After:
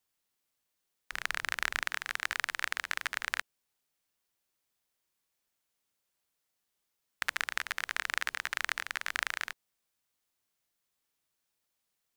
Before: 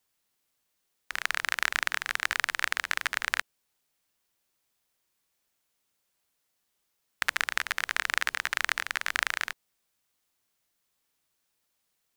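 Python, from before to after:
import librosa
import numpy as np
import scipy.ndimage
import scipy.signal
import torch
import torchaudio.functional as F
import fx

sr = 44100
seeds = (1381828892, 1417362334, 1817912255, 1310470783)

y = fx.low_shelf(x, sr, hz=240.0, db=10.0, at=(1.12, 1.83))
y = y * 10.0 ** (-5.0 / 20.0)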